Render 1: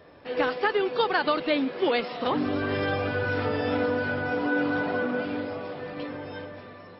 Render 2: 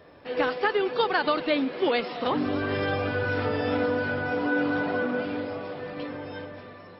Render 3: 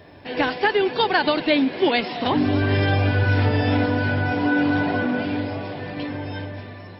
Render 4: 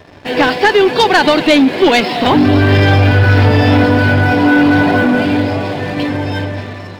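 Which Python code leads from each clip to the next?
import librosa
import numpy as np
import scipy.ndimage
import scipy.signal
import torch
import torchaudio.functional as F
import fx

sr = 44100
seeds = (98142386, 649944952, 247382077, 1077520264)

y1 = x + 10.0 ** (-21.0 / 20.0) * np.pad(x, (int(237 * sr / 1000.0), 0))[:len(x)]
y2 = fx.graphic_eq_31(y1, sr, hz=(100, 500, 1250), db=(8, -9, -11))
y2 = y2 * librosa.db_to_amplitude(7.5)
y3 = fx.leveller(y2, sr, passes=2)
y3 = y3 * librosa.db_to_amplitude(4.5)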